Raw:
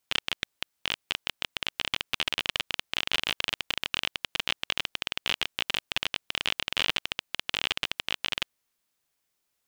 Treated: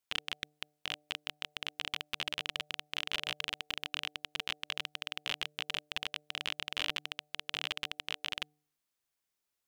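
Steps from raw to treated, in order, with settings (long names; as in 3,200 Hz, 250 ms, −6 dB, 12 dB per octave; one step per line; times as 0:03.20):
hum removal 149.4 Hz, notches 5
level −7.5 dB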